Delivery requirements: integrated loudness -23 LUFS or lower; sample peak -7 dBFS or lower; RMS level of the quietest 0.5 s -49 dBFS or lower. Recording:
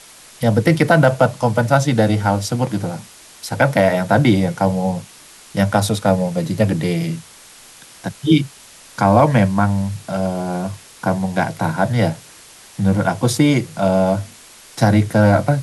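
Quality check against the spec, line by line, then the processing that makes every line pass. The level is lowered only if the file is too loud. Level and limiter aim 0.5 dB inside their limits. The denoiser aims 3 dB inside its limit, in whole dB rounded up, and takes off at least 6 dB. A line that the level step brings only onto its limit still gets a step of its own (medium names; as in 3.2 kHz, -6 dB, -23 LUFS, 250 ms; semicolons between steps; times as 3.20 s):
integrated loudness -17.5 LUFS: fail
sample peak -2.0 dBFS: fail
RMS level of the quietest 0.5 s -43 dBFS: fail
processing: noise reduction 6 dB, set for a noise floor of -43 dBFS; trim -6 dB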